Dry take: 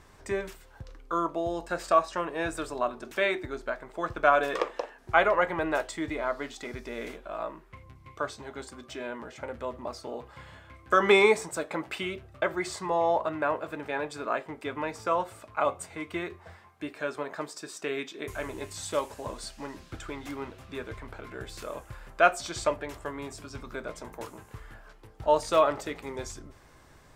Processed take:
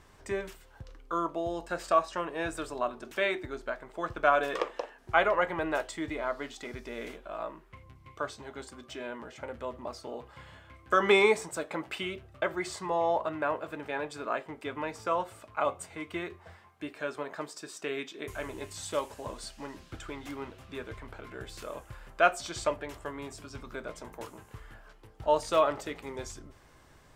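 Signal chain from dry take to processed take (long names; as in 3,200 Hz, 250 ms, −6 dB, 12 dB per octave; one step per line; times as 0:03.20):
parametric band 3,000 Hz +3 dB 0.23 octaves
level −2.5 dB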